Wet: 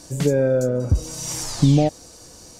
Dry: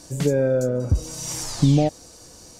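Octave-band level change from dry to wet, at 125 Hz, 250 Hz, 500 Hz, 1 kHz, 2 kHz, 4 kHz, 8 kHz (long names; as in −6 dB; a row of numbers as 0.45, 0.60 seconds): +1.5, +1.5, +1.5, +1.5, +1.5, +1.5, +1.5 decibels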